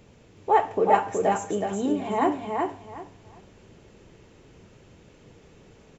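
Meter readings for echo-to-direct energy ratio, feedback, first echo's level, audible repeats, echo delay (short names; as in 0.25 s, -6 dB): -3.5 dB, 22%, -3.5 dB, 3, 0.372 s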